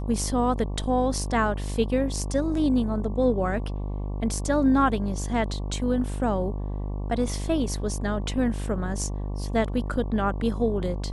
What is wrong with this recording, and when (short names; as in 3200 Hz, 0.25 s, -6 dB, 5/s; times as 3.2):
buzz 50 Hz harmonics 23 -30 dBFS